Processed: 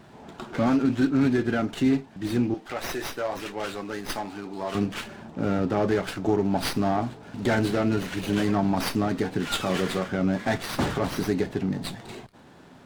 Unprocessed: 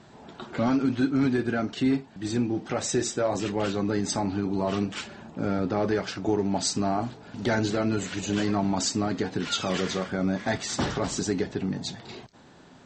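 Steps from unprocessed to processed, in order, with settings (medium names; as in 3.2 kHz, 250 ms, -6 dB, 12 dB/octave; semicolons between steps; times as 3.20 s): 2.54–4.75 s: high-pass 940 Hz 6 dB/octave; sliding maximum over 5 samples; trim +2 dB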